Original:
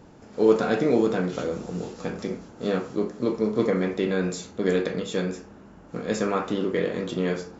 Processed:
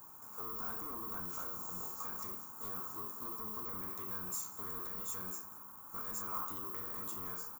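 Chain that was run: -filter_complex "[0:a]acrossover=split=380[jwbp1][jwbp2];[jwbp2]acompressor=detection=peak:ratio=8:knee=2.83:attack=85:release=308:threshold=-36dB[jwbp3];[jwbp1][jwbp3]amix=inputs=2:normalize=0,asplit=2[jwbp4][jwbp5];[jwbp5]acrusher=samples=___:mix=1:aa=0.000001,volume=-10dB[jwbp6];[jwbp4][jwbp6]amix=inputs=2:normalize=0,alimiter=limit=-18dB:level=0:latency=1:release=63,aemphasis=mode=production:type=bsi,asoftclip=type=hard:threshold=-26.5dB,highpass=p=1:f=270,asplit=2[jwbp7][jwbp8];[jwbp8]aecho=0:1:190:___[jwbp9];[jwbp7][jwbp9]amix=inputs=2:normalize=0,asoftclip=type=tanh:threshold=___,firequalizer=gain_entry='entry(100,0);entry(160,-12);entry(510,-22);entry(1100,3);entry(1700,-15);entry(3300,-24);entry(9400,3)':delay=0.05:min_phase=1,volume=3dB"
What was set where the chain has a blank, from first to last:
21, 0.0841, -32dB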